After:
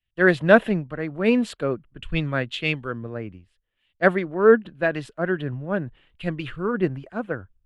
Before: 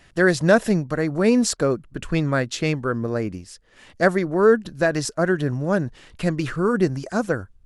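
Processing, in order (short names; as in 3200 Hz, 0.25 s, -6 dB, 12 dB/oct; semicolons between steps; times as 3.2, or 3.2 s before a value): resonant high shelf 4200 Hz -11 dB, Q 3; three-band expander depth 100%; gain -4 dB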